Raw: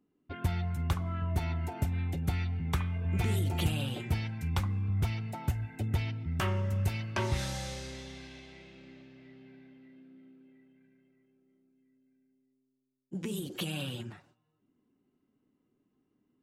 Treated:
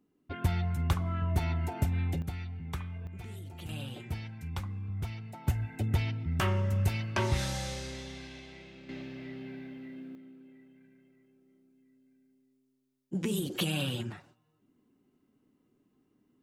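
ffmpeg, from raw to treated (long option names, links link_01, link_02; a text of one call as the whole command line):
ffmpeg -i in.wav -af "asetnsamples=nb_out_samples=441:pad=0,asendcmd='2.22 volume volume -6.5dB;3.07 volume volume -14dB;3.69 volume volume -6dB;5.47 volume volume 2dB;8.89 volume volume 11dB;10.15 volume volume 4.5dB',volume=2dB" out.wav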